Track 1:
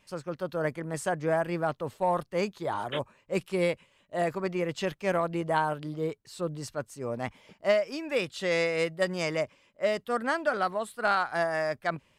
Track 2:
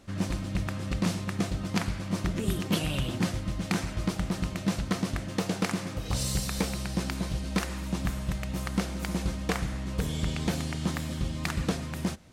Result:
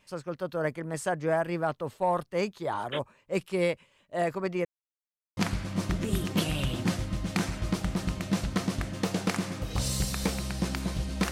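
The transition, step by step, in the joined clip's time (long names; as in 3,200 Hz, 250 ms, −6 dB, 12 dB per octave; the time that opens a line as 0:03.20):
track 1
0:04.65–0:05.37: silence
0:05.37: continue with track 2 from 0:01.72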